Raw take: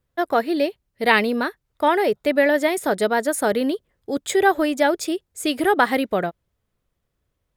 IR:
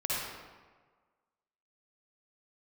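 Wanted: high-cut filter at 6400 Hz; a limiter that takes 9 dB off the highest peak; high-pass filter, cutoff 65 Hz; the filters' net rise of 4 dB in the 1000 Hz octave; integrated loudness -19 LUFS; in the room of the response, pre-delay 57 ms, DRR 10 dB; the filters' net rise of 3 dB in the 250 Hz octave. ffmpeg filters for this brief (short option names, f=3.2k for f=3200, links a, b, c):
-filter_complex "[0:a]highpass=65,lowpass=6.4k,equalizer=f=250:t=o:g=3.5,equalizer=f=1k:t=o:g=5,alimiter=limit=-7.5dB:level=0:latency=1,asplit=2[a][b];[1:a]atrim=start_sample=2205,adelay=57[c];[b][c]afir=irnorm=-1:irlink=0,volume=-17.5dB[d];[a][d]amix=inputs=2:normalize=0,volume=1dB"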